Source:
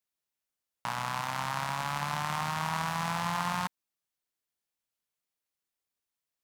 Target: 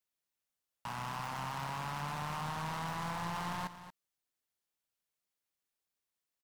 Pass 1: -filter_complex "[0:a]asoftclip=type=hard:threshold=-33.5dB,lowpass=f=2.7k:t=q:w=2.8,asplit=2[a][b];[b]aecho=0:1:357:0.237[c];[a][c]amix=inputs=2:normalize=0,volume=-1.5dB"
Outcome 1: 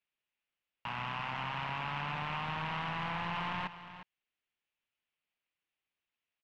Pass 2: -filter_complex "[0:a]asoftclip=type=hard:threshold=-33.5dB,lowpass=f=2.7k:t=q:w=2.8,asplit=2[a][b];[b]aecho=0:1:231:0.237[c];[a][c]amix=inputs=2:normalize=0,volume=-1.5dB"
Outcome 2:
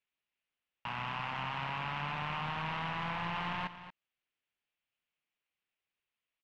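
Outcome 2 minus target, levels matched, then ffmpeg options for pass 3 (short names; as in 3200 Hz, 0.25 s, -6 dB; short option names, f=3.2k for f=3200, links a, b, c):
2000 Hz band +3.0 dB
-filter_complex "[0:a]asoftclip=type=hard:threshold=-33.5dB,asplit=2[a][b];[b]aecho=0:1:231:0.237[c];[a][c]amix=inputs=2:normalize=0,volume=-1.5dB"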